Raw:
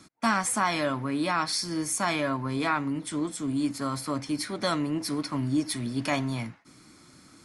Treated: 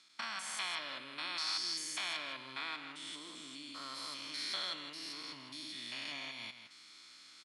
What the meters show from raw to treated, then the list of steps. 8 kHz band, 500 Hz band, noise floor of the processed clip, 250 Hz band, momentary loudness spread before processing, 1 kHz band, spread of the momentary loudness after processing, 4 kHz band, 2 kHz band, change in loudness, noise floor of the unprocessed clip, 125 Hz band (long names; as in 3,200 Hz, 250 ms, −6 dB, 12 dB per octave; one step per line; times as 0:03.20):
−12.5 dB, −22.0 dB, −58 dBFS, −26.0 dB, 6 LU, −16.5 dB, 11 LU, −2.5 dB, −9.5 dB, −11.5 dB, −55 dBFS, −31.0 dB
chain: spectrum averaged block by block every 200 ms
downward compressor, threshold −33 dBFS, peak gain reduction 8.5 dB
resonant band-pass 3,400 Hz, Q 1.9
on a send: single-tap delay 162 ms −9.5 dB
on the sum: level +8 dB